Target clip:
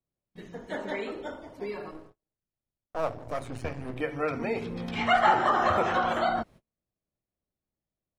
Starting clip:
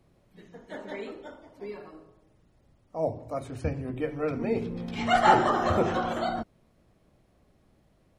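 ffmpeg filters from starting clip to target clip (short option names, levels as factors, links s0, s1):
-filter_complex "[0:a]asettb=1/sr,asplit=3[s0][s1][s2];[s0]atrim=end=1.914[s3];[s1]atrim=start=1.91:end=4.01,asetpts=PTS-STARTPTS,afade=t=in:d=0.004:c=qsin,afade=t=out:st=2.096:d=0.004:c=qsin,aeval=exprs='if(lt(val(0),0),0.251*val(0),val(0))':c=same[s4];[s2]atrim=start=4.006[s5];[s3][s4]acrossfade=d=0.004:c1=hsin:c2=qsin[s6];[s6][s5]acrossfade=d=0.004:c1=qsin:c2=hsin,acrossover=split=690|3200[s7][s8][s9];[s7]acompressor=threshold=0.01:ratio=4[s10];[s8]acompressor=threshold=0.0447:ratio=4[s11];[s9]acompressor=threshold=0.00126:ratio=4[s12];[s10][s11][s12]amix=inputs=3:normalize=0,agate=range=0.02:threshold=0.00178:ratio=16:detection=peak,volume=2.11"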